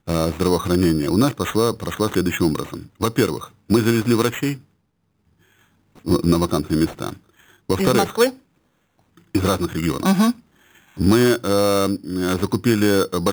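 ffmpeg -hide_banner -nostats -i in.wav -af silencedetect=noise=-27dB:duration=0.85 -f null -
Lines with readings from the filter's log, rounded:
silence_start: 4.55
silence_end: 6.07 | silence_duration: 1.52
silence_start: 8.30
silence_end: 9.35 | silence_duration: 1.04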